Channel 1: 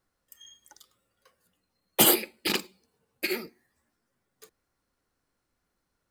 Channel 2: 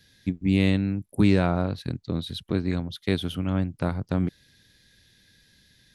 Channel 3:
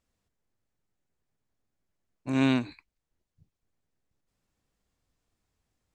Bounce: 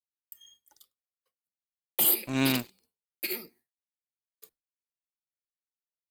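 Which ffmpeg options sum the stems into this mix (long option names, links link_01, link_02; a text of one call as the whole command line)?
ffmpeg -i stem1.wav -i stem2.wav -i stem3.wav -filter_complex "[0:a]equalizer=frequency=1600:width_type=o:width=0.67:gain=-5,equalizer=frequency=6300:width_type=o:width=0.67:gain=-6,equalizer=frequency=16000:width_type=o:width=0.67:gain=7,alimiter=limit=-9.5dB:level=0:latency=1:release=35,volume=-7.5dB[link_01];[2:a]aeval=exprs='sgn(val(0))*max(abs(val(0))-0.01,0)':channel_layout=same,volume=-1.5dB[link_02];[link_01][link_02]amix=inputs=2:normalize=0,agate=range=-33dB:threshold=-59dB:ratio=3:detection=peak,highshelf=frequency=2700:gain=8.5,alimiter=limit=-12dB:level=0:latency=1:release=252" out.wav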